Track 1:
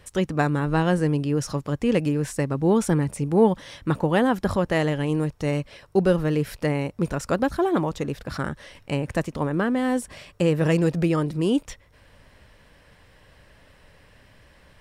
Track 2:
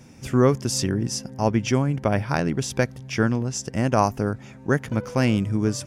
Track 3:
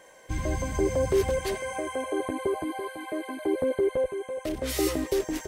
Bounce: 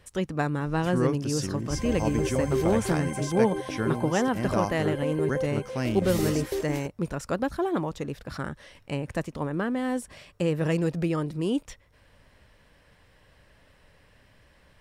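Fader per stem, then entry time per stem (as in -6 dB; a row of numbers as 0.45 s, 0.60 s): -5.0 dB, -8.5 dB, -4.0 dB; 0.00 s, 0.60 s, 1.40 s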